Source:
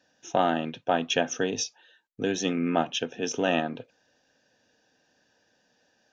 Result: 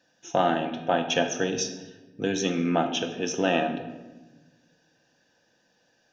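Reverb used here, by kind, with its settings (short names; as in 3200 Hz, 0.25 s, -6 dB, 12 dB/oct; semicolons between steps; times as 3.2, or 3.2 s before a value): shoebox room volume 710 m³, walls mixed, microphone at 0.78 m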